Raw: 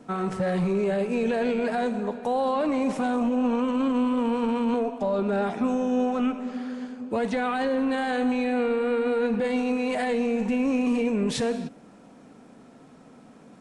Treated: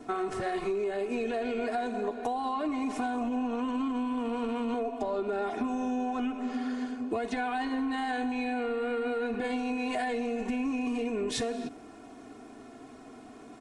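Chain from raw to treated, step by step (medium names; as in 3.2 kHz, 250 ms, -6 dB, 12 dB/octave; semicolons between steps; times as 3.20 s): comb 2.8 ms, depth 99%; compression 10:1, threshold -28 dBFS, peak gain reduction 10.5 dB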